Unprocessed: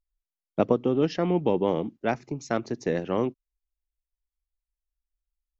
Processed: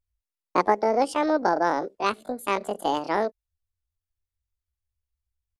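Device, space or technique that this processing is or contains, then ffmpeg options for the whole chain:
chipmunk voice: -af "asetrate=76340,aresample=44100,atempo=0.577676,volume=1.5dB"

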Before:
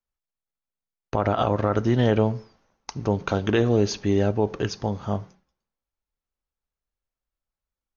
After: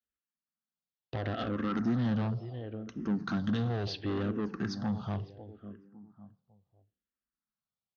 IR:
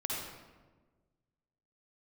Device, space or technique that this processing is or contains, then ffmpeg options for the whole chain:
barber-pole phaser into a guitar amplifier: -filter_complex "[0:a]asettb=1/sr,asplit=3[link_01][link_02][link_03];[link_01]atrim=end=2.304[link_04];[link_02]atrim=start=2.3:end=3.27,asetpts=PTS-STARTPTS,afade=type=in:duration=0.004:curve=qsin,afade=type=out:start_time=0.966:duration=0.004:curve=qsin,equalizer=frequency=1500:width=0.64:gain=-5[link_05];[link_03]atrim=start=3.266[link_06];[link_04][link_05]acrossfade=duration=0.004:curve1=hsin:curve2=qsin[link_07];[link_07][link_06]acrossfade=duration=0.004:curve1=qsin:curve2=hsin,asplit=2[link_08][link_09];[link_09]adelay=552,lowpass=frequency=1500:poles=1,volume=-14.5dB,asplit=2[link_10][link_11];[link_11]adelay=552,lowpass=frequency=1500:poles=1,volume=0.33,asplit=2[link_12][link_13];[link_13]adelay=552,lowpass=frequency=1500:poles=1,volume=0.33[link_14];[link_08][link_10][link_12][link_14]amix=inputs=4:normalize=0,asplit=2[link_15][link_16];[link_16]afreqshift=-0.72[link_17];[link_15][link_17]amix=inputs=2:normalize=1,asoftclip=type=tanh:threshold=-26dB,highpass=99,equalizer=frequency=220:width_type=q:width=4:gain=5,equalizer=frequency=420:width_type=q:width=4:gain=-7,equalizer=frequency=600:width_type=q:width=4:gain=-7,equalizer=frequency=920:width_type=q:width=4:gain=-8,equalizer=frequency=2300:width_type=q:width=4:gain=-8,lowpass=frequency=4600:width=0.5412,lowpass=frequency=4600:width=1.3066"

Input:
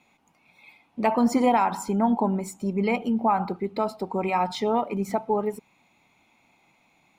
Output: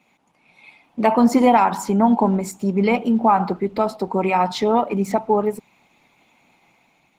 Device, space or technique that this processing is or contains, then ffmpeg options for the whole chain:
video call: -af "highpass=frequency=110:width=0.5412,highpass=frequency=110:width=1.3066,dynaudnorm=framelen=140:gausssize=7:maxgain=3.5dB,volume=3dB" -ar 48000 -c:a libopus -b:a 16k

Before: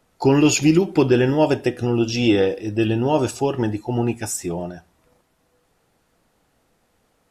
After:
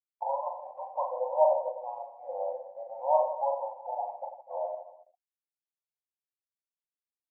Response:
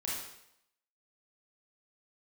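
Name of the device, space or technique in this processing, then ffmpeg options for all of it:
voice memo with heavy noise removal: -af "afftfilt=real='re*between(b*sr/4096,500,1100)':imag='im*between(b*sr/4096,500,1100)':win_size=4096:overlap=0.75,agate=range=-33dB:threshold=-46dB:ratio=3:detection=peak,anlmdn=0.251,dynaudnorm=framelen=110:gausssize=9:maxgain=5dB,aecho=1:1:40|92|159.6|247.5|361.7:0.631|0.398|0.251|0.158|0.1,volume=-8dB"

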